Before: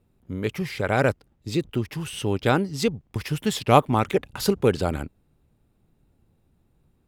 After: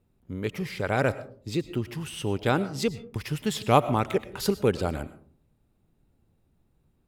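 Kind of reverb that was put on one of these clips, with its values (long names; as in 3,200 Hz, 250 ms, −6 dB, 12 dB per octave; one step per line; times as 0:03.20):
comb and all-pass reverb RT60 0.47 s, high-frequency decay 0.35×, pre-delay 70 ms, DRR 14.5 dB
level −3.5 dB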